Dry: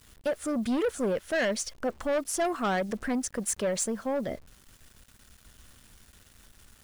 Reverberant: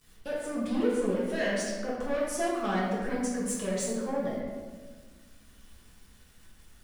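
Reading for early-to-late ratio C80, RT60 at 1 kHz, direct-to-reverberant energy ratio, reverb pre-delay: 2.0 dB, 1.4 s, -7.0 dB, 4 ms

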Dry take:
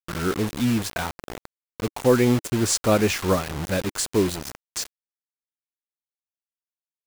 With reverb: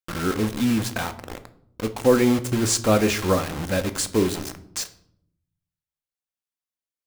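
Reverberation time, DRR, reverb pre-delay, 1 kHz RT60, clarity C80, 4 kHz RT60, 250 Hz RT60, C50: 0.70 s, 8.5 dB, 4 ms, 0.60 s, 19.0 dB, 0.45 s, 1.1 s, 15.0 dB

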